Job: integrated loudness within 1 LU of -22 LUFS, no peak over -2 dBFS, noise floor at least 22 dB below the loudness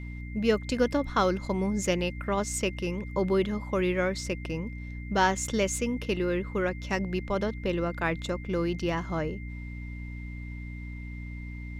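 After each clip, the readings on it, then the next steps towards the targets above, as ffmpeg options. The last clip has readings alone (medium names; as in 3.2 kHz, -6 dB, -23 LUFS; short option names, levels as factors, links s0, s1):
hum 60 Hz; highest harmonic 300 Hz; hum level -36 dBFS; steady tone 2.1 kHz; tone level -47 dBFS; loudness -29.5 LUFS; peak level -11.5 dBFS; loudness target -22.0 LUFS
-> -af "bandreject=f=60:t=h:w=6,bandreject=f=120:t=h:w=6,bandreject=f=180:t=h:w=6,bandreject=f=240:t=h:w=6,bandreject=f=300:t=h:w=6"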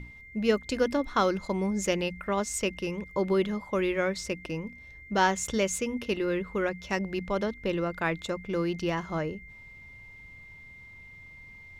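hum not found; steady tone 2.1 kHz; tone level -47 dBFS
-> -af "bandreject=f=2100:w=30"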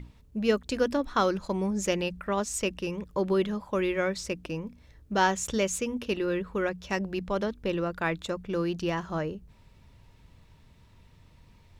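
steady tone not found; loudness -29.5 LUFS; peak level -12.0 dBFS; loudness target -22.0 LUFS
-> -af "volume=2.37"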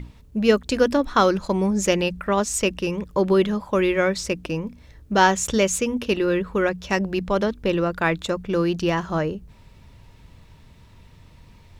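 loudness -22.0 LUFS; peak level -4.5 dBFS; noise floor -50 dBFS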